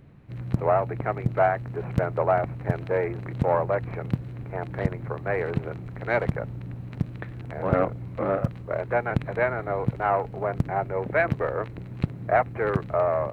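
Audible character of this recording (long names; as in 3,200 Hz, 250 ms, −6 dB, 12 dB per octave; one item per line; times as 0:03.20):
background noise floor −39 dBFS
spectral slope −4.0 dB per octave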